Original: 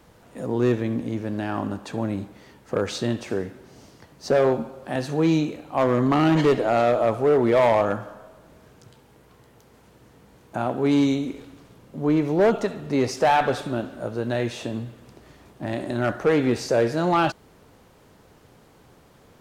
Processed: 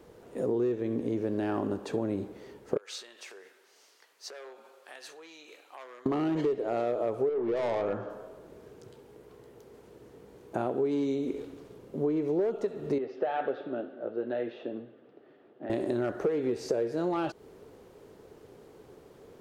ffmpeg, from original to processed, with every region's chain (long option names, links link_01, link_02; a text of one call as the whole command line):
ffmpeg -i in.wav -filter_complex "[0:a]asettb=1/sr,asplit=3[link_01][link_02][link_03];[link_01]atrim=end=2.774[link_04];[link_02]atrim=start=2.77:end=6.06,asetpts=PTS-STARTPTS,afade=type=in:duration=0.004:curve=qsin,afade=type=out:start_time=3.286:duration=0.004:curve=qsin,acompressor=threshold=-28dB:ratio=6:attack=3.2:release=140:knee=1:detection=peak,highpass=1500[link_05];[link_03]atrim=start=6.056[link_06];[link_04][link_05]acrossfade=duration=0.004:curve1=hsin:curve2=qsin[link_07];[link_07][link_06]acrossfade=duration=0.004:curve1=qsin:curve2=hsin,asettb=1/sr,asplit=3[link_08][link_09][link_10];[link_08]atrim=end=7.294[link_11];[link_09]atrim=start=7.29:end=8.1,asetpts=PTS-STARTPTS,afade=type=in:duration=0.004:curve=qsin,afade=type=out:start_time=0.806:duration=0.004:curve=qsin,lowpass=4700,aeval=exprs='(tanh(10*val(0)+0.15)-tanh(0.15))/10':channel_layout=same[link_12];[link_10]atrim=start=8.096[link_13];[link_11][link_12]acrossfade=duration=0.004:curve1=hsin:curve2=qsin[link_14];[link_14][link_13]acrossfade=duration=0.004:curve1=qsin:curve2=hsin,asettb=1/sr,asplit=3[link_15][link_16][link_17];[link_15]atrim=end=12.984[link_18];[link_16]atrim=start=12.98:end=15.7,asetpts=PTS-STARTPTS,afade=type=in:duration=0.004:curve=qsin,afade=type=out:start_time=2.716:duration=0.004:curve=qsin,highpass=280,equalizer=frequency=420:width_type=q:width=4:gain=-6,equalizer=frequency=990:width_type=q:width=4:gain=-9,equalizer=frequency=2300:width_type=q:width=4:gain=-7,lowpass=frequency=3000:width=0.5412,lowpass=frequency=3000:width=1.3066,flanger=delay=6.6:depth=2.1:regen=-58:speed=1.4:shape=triangular[link_19];[link_17]atrim=start=15.696[link_20];[link_18][link_19]acrossfade=duration=0.004:curve1=hsin:curve2=qsin[link_21];[link_21][link_20]acrossfade=duration=0.004:curve1=qsin:curve2=hsin,equalizer=frequency=410:width_type=o:width=0.85:gain=13.5,acompressor=threshold=-20dB:ratio=12,volume=-5.5dB" out.wav